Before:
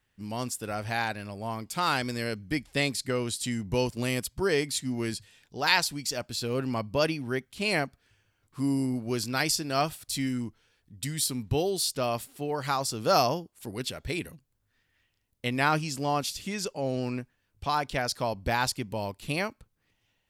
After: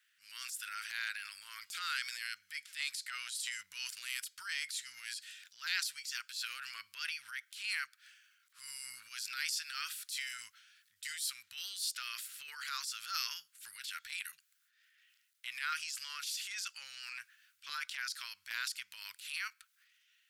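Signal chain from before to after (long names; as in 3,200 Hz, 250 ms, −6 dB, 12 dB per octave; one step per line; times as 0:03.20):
elliptic high-pass filter 1,400 Hz, stop band 50 dB
downward compressor 2 to 1, threshold −46 dBFS, peak gain reduction 15 dB
transient designer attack −10 dB, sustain +7 dB
level +4.5 dB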